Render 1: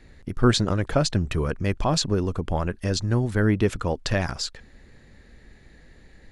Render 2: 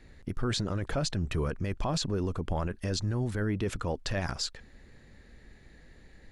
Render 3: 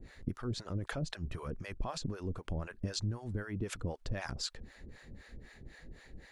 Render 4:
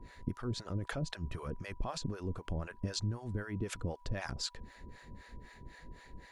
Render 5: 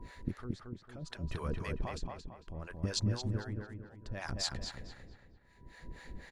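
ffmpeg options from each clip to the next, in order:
ffmpeg -i in.wav -af "alimiter=limit=-18.5dB:level=0:latency=1:release=15,volume=-3.5dB" out.wav
ffmpeg -i in.wav -filter_complex "[0:a]acompressor=threshold=-37dB:ratio=5,acrossover=split=550[link_01][link_02];[link_01]aeval=exprs='val(0)*(1-1/2+1/2*cos(2*PI*3.9*n/s))':channel_layout=same[link_03];[link_02]aeval=exprs='val(0)*(1-1/2-1/2*cos(2*PI*3.9*n/s))':channel_layout=same[link_04];[link_03][link_04]amix=inputs=2:normalize=0,volume=6.5dB" out.wav
ffmpeg -i in.wav -af "aeval=exprs='val(0)+0.000891*sin(2*PI*980*n/s)':channel_layout=same" out.wav
ffmpeg -i in.wav -filter_complex "[0:a]tremolo=f=0.66:d=1,asplit=2[link_01][link_02];[link_02]adelay=225,lowpass=frequency=3000:poles=1,volume=-3dB,asplit=2[link_03][link_04];[link_04]adelay=225,lowpass=frequency=3000:poles=1,volume=0.41,asplit=2[link_05][link_06];[link_06]adelay=225,lowpass=frequency=3000:poles=1,volume=0.41,asplit=2[link_07][link_08];[link_08]adelay=225,lowpass=frequency=3000:poles=1,volume=0.41,asplit=2[link_09][link_10];[link_10]adelay=225,lowpass=frequency=3000:poles=1,volume=0.41[link_11];[link_01][link_03][link_05][link_07][link_09][link_11]amix=inputs=6:normalize=0,volume=3dB" out.wav

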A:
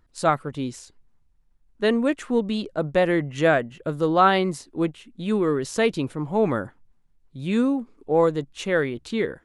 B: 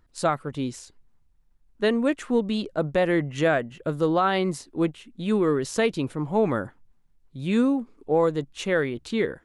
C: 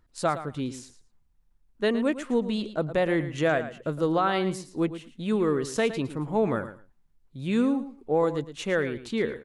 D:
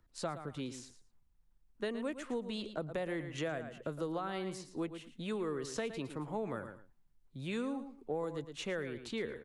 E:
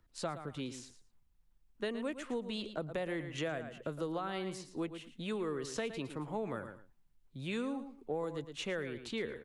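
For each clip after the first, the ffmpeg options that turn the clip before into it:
ffmpeg -i in.wav -af "alimiter=limit=-12dB:level=0:latency=1:release=240" out.wav
ffmpeg -i in.wav -af "aecho=1:1:112|224:0.237|0.0379,volume=-2.5dB" out.wav
ffmpeg -i in.wav -filter_complex "[0:a]acrossover=split=94|380|7900[link_01][link_02][link_03][link_04];[link_01]acompressor=threshold=-53dB:ratio=4[link_05];[link_02]acompressor=threshold=-39dB:ratio=4[link_06];[link_03]acompressor=threshold=-34dB:ratio=4[link_07];[link_04]acompressor=threshold=-57dB:ratio=4[link_08];[link_05][link_06][link_07][link_08]amix=inputs=4:normalize=0,volume=-4.5dB" out.wav
ffmpeg -i in.wav -af "equalizer=frequency=2900:width=1.5:gain=2.5" out.wav

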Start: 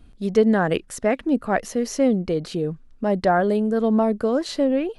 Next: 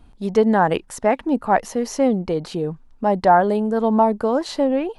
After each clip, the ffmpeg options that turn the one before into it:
ffmpeg -i in.wav -af "equalizer=frequency=890:width_type=o:width=0.54:gain=12" out.wav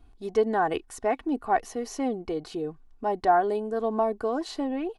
ffmpeg -i in.wav -af "aecho=1:1:2.7:0.64,volume=-9dB" out.wav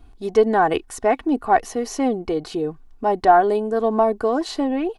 ffmpeg -i in.wav -af "aeval=exprs='0.316*(cos(1*acos(clip(val(0)/0.316,-1,1)))-cos(1*PI/2))+0.00562*(cos(4*acos(clip(val(0)/0.316,-1,1)))-cos(4*PI/2))':channel_layout=same,volume=7.5dB" out.wav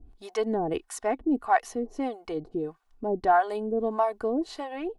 ffmpeg -i in.wav -filter_complex "[0:a]acrossover=split=590[link_01][link_02];[link_01]aeval=exprs='val(0)*(1-1/2+1/2*cos(2*PI*1.6*n/s))':channel_layout=same[link_03];[link_02]aeval=exprs='val(0)*(1-1/2-1/2*cos(2*PI*1.6*n/s))':channel_layout=same[link_04];[link_03][link_04]amix=inputs=2:normalize=0,volume=-3dB" out.wav

